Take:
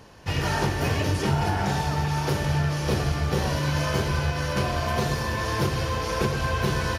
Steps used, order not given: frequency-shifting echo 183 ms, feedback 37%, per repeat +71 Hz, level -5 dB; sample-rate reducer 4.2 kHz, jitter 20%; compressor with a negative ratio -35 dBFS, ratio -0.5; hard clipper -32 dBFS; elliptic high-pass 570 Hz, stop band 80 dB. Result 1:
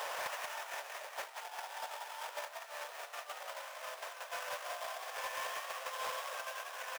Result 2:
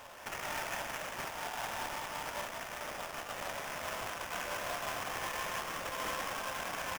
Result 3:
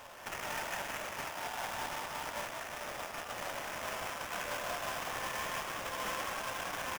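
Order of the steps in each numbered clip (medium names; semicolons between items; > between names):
compressor with a negative ratio > sample-rate reducer > elliptic high-pass > frequency-shifting echo > hard clipper; hard clipper > compressor with a negative ratio > elliptic high-pass > frequency-shifting echo > sample-rate reducer; hard clipper > compressor with a negative ratio > elliptic high-pass > sample-rate reducer > frequency-shifting echo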